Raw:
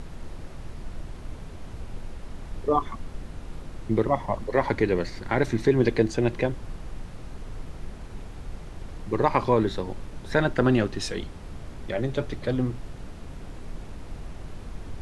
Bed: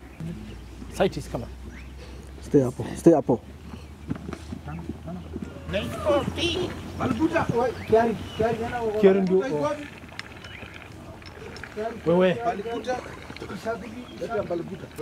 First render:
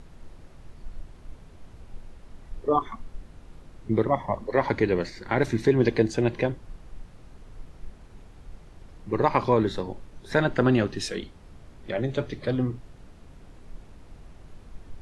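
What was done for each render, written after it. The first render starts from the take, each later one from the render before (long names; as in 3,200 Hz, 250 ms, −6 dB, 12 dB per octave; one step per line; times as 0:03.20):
noise reduction from a noise print 9 dB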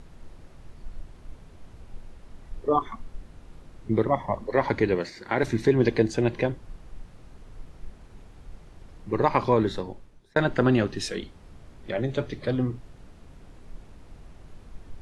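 0:04.95–0:05.43: high-pass filter 210 Hz 6 dB per octave
0:09.72–0:10.36: fade out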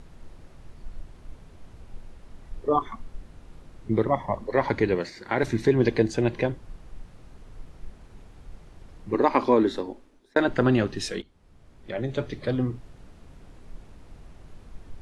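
0:09.14–0:10.48: low shelf with overshoot 200 Hz −8 dB, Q 3
0:11.22–0:12.28: fade in, from −16.5 dB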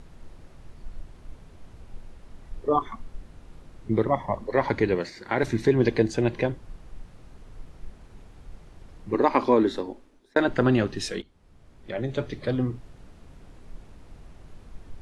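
no processing that can be heard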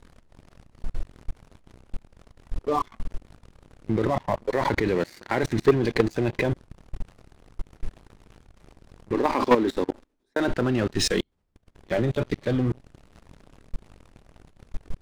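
output level in coarse steps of 17 dB
leveller curve on the samples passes 3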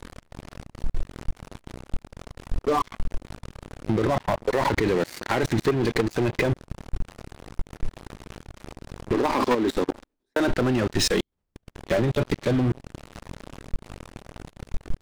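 downward compressor 6 to 1, threshold −28 dBFS, peak gain reduction 14.5 dB
leveller curve on the samples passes 3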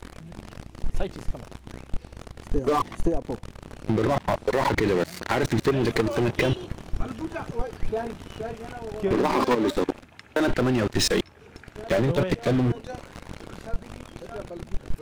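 mix in bed −10 dB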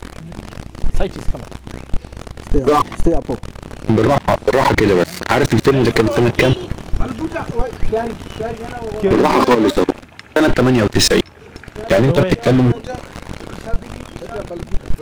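level +10 dB
brickwall limiter −1 dBFS, peak gain reduction 1 dB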